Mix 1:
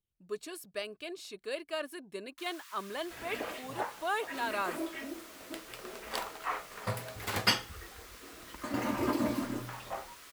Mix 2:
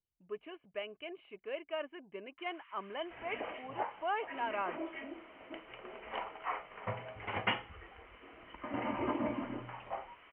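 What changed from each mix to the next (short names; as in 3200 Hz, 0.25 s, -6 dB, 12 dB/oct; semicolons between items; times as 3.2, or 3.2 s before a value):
master: add rippled Chebyshev low-pass 3100 Hz, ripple 6 dB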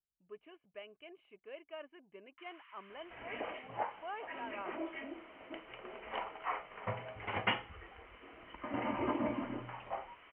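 speech -8.5 dB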